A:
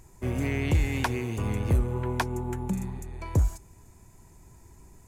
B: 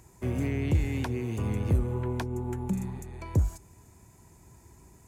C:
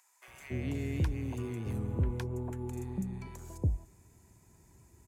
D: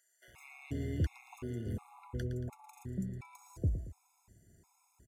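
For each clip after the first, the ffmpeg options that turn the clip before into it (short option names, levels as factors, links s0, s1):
-filter_complex "[0:a]highpass=59,acrossover=split=490[s0][s1];[s1]acompressor=threshold=0.00562:ratio=2[s2];[s0][s2]amix=inputs=2:normalize=0"
-filter_complex "[0:a]acrossover=split=870[s0][s1];[s0]adelay=280[s2];[s2][s1]amix=inputs=2:normalize=0,volume=0.531"
-af "aecho=1:1:114|228|342|456|570:0.282|0.13|0.0596|0.0274|0.0126,afftfilt=real='re*gt(sin(2*PI*1.4*pts/sr)*(1-2*mod(floor(b*sr/1024/700),2)),0)':imag='im*gt(sin(2*PI*1.4*pts/sr)*(1-2*mod(floor(b*sr/1024/700),2)),0)':win_size=1024:overlap=0.75,volume=0.794"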